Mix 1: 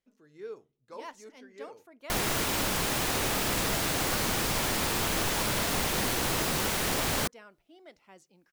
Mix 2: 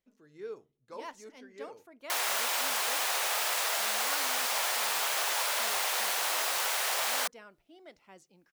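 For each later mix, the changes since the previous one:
background: add high-pass filter 610 Hz 24 dB per octave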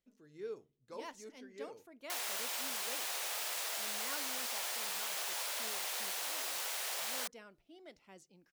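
background −7.0 dB
master: add parametric band 1,100 Hz −5.5 dB 2.1 octaves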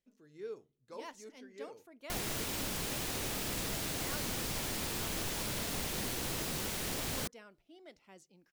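background: remove high-pass filter 610 Hz 24 dB per octave

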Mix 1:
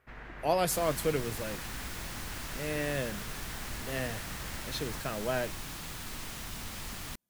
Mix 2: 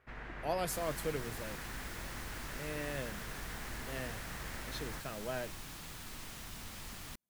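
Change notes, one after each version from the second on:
speech −7.5 dB
second sound −6.0 dB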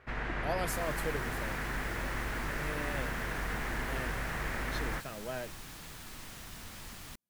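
first sound +10.0 dB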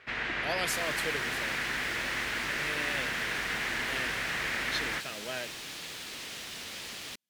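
second sound: add parametric band 480 Hz +8.5 dB 1.3 octaves
master: add meter weighting curve D

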